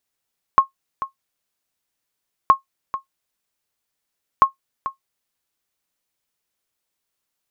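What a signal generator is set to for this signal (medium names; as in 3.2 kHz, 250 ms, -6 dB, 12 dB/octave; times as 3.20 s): sonar ping 1.08 kHz, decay 0.12 s, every 1.92 s, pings 3, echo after 0.44 s, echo -13.5 dB -2.5 dBFS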